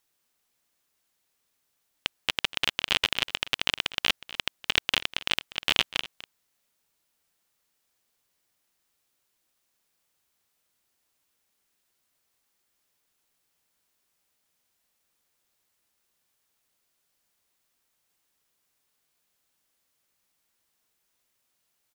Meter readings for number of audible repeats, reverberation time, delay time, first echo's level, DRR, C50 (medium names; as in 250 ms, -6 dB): 1, no reverb, 245 ms, -17.0 dB, no reverb, no reverb